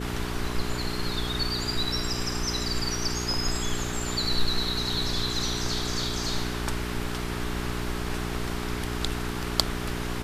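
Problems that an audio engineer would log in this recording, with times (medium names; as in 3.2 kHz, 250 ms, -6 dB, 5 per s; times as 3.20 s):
hum 60 Hz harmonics 7 -33 dBFS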